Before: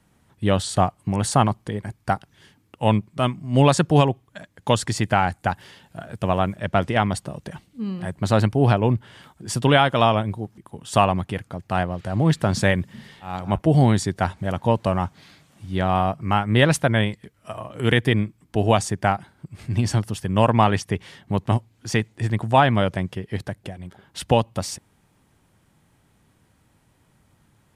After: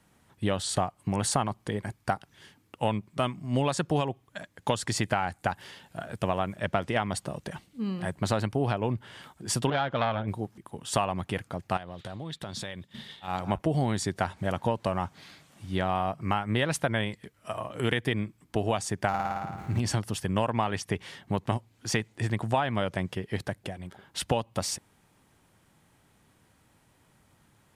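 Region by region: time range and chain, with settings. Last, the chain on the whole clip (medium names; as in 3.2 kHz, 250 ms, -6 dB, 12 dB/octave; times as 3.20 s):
9.70–10.28 s: distance through air 220 m + transformer saturation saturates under 750 Hz
11.77–13.28 s: peaking EQ 3.6 kHz +13 dB 0.37 oct + compression 12:1, threshold -31 dBFS + expander -39 dBFS
19.08–19.80 s: median filter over 15 samples + peaking EQ 5 kHz -7.5 dB 0.24 oct + flutter echo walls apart 9.4 m, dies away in 1.2 s
whole clip: bass shelf 260 Hz -5.5 dB; compression, threshold -23 dBFS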